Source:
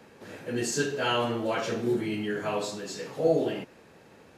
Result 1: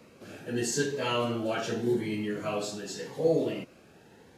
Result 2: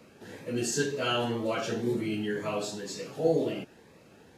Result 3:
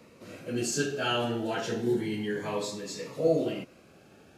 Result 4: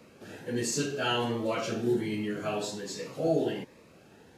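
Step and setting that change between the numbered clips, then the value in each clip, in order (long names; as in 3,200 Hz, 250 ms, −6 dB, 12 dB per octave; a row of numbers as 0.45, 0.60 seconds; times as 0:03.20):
phaser whose notches keep moving one way, speed: 0.85, 2, 0.31, 1.3 Hertz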